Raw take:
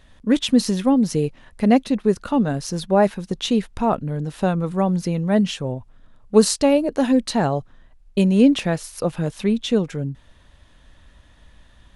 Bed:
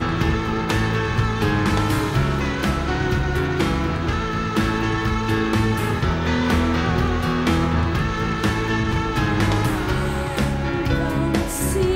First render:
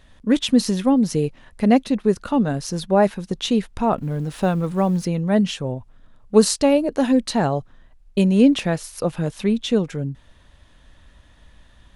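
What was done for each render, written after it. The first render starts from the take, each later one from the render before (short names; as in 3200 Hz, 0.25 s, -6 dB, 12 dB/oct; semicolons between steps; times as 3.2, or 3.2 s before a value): 3.98–5.05 G.711 law mismatch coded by mu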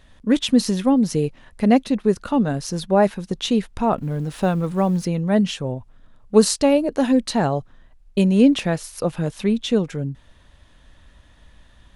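nothing audible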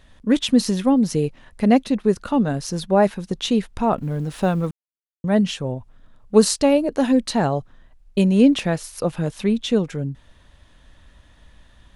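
4.71–5.24 mute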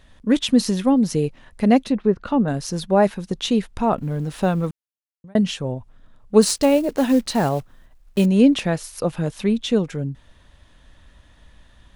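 1.82–2.48 treble ducked by the level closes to 1700 Hz, closed at -15 dBFS; 4.68–5.35 fade out; 6.42–8.26 block floating point 5-bit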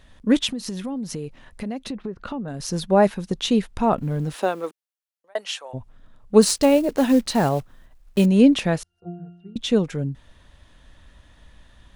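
0.5–2.6 compressor, threshold -27 dBFS; 4.33–5.73 HPF 270 Hz -> 750 Hz 24 dB/oct; 8.83–9.56 octave resonator F, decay 0.61 s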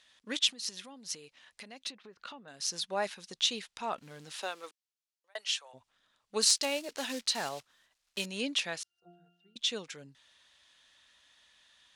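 band-pass 4800 Hz, Q 0.85; overloaded stage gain 9.5 dB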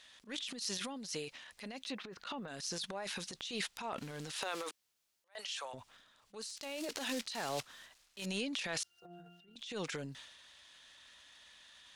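negative-ratio compressor -39 dBFS, ratio -1; transient shaper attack -12 dB, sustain +8 dB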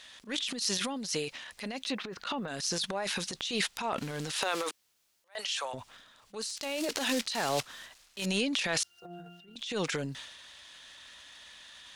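gain +8 dB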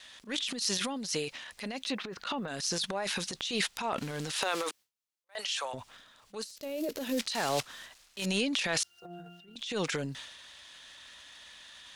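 gate with hold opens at -59 dBFS; 6.44–7.18 spectral gain 650–11000 Hz -11 dB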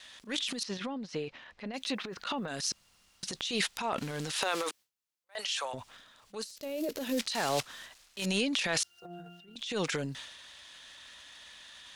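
0.63–1.74 tape spacing loss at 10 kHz 28 dB; 2.72–3.23 room tone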